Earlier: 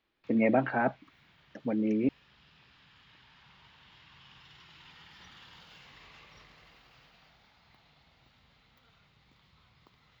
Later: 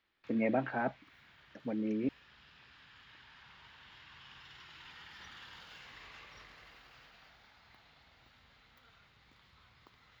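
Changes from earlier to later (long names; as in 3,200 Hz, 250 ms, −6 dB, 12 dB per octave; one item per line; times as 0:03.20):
speech −6.0 dB
background: add graphic EQ with 15 bands 160 Hz −6 dB, 1,600 Hz +5 dB, 10,000 Hz +5 dB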